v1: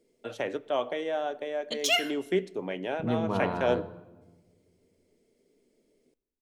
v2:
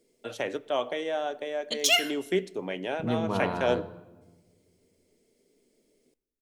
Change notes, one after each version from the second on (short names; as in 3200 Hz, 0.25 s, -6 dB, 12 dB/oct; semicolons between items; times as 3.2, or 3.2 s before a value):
master: add high shelf 3400 Hz +7 dB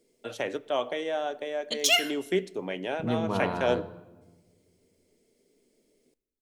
none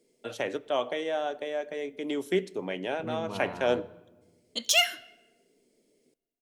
second voice -8.5 dB; background: entry +2.85 s